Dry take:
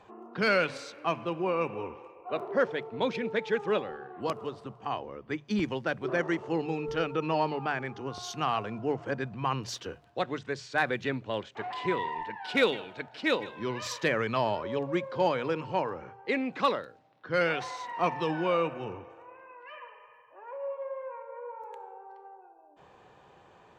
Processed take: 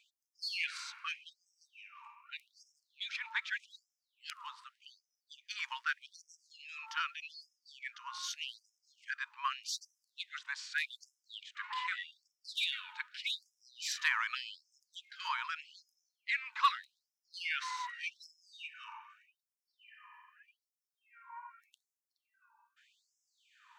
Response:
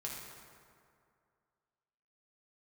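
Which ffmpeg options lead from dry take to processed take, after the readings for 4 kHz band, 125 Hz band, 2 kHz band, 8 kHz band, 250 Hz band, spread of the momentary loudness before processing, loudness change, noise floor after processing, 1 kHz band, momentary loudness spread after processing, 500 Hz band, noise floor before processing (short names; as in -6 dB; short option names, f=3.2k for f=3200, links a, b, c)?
-1.0 dB, under -40 dB, -4.5 dB, 0.0 dB, under -40 dB, 15 LU, -7.5 dB, under -85 dBFS, -9.0 dB, 20 LU, under -40 dB, -57 dBFS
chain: -af "afftfilt=real='re*gte(b*sr/1024,830*pow(5100/830,0.5+0.5*sin(2*PI*0.83*pts/sr)))':imag='im*gte(b*sr/1024,830*pow(5100/830,0.5+0.5*sin(2*PI*0.83*pts/sr)))':win_size=1024:overlap=0.75"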